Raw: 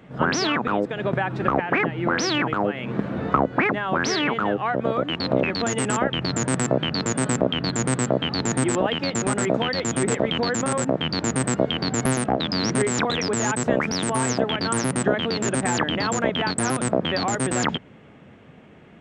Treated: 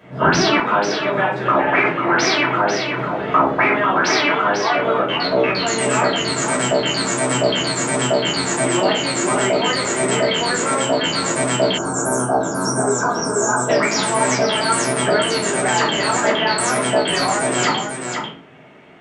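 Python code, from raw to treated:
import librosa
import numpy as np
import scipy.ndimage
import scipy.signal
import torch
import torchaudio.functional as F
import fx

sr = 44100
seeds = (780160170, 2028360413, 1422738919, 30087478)

y = fx.low_shelf(x, sr, hz=230.0, db=-3.0)
y = y + 10.0 ** (-6.5 / 20.0) * np.pad(y, (int(494 * sr / 1000.0), 0))[:len(y)]
y = fx.room_shoebox(y, sr, seeds[0], volume_m3=300.0, walls='furnished', distance_m=5.4)
y = fx.spec_box(y, sr, start_s=11.78, length_s=1.91, low_hz=1700.0, high_hz=5300.0, gain_db=-25)
y = fx.highpass(y, sr, hz=fx.steps((0.0, 86.0), (0.6, 520.0)), slope=6)
y = y * librosa.db_to_amplitude(-2.0)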